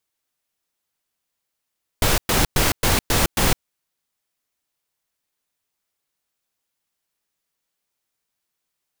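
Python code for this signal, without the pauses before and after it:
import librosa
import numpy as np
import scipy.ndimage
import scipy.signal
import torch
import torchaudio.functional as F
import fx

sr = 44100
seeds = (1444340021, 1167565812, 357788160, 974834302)

y = fx.noise_burst(sr, seeds[0], colour='pink', on_s=0.16, off_s=0.11, bursts=6, level_db=-17.5)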